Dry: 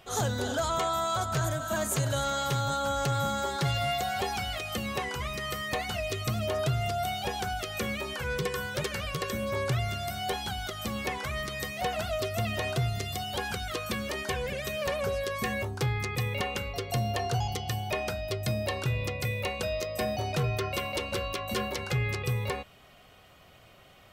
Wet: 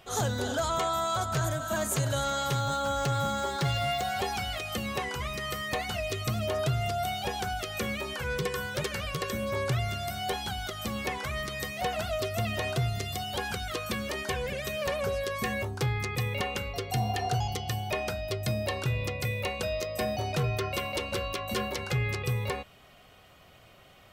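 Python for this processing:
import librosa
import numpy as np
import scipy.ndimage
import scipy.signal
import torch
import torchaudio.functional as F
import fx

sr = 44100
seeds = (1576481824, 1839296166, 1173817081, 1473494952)

y = fx.median_filter(x, sr, points=3, at=(2.59, 4.05))
y = fx.spec_repair(y, sr, seeds[0], start_s=16.95, length_s=0.37, low_hz=490.0, high_hz=1200.0, source='after')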